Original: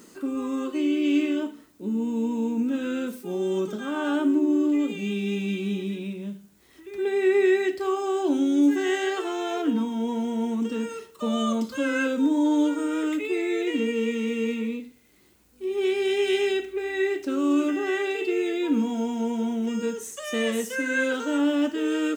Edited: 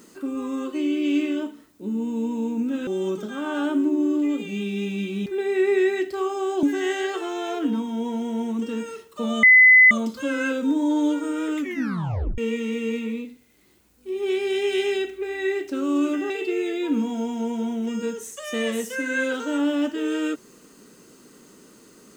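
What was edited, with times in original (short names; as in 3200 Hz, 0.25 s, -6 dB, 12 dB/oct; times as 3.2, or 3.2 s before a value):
2.87–3.37 cut
5.76–6.93 cut
8.3–8.66 cut
11.46 add tone 2020 Hz -8.5 dBFS 0.48 s
13.13 tape stop 0.80 s
17.85–18.1 cut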